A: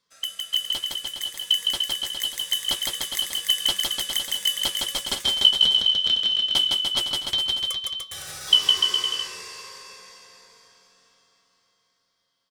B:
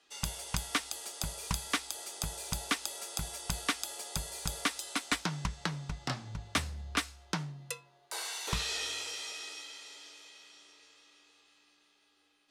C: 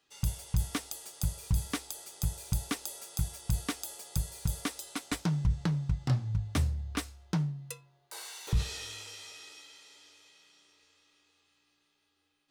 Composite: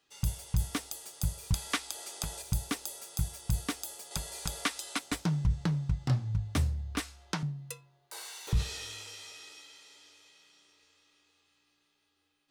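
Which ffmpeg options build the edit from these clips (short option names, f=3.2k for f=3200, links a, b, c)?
-filter_complex "[1:a]asplit=3[a][b][c];[2:a]asplit=4[d][e][f][g];[d]atrim=end=1.542[h];[a]atrim=start=1.538:end=2.422[i];[e]atrim=start=2.418:end=4.112[j];[b]atrim=start=4.108:end=4.992[k];[f]atrim=start=4.988:end=7.002[l];[c]atrim=start=6.998:end=7.432[m];[g]atrim=start=7.428[n];[h][i]acrossfade=d=0.004:c1=hsin:c2=hsin[o];[o][j]acrossfade=d=0.004:c1=hsin:c2=hsin[p];[p][k]acrossfade=d=0.004:c1=hsin:c2=hsin[q];[q][l]acrossfade=d=0.004:c1=hsin:c2=hsin[r];[r][m]acrossfade=d=0.004:c1=hsin:c2=hsin[s];[s][n]acrossfade=d=0.004:c1=hsin:c2=hsin"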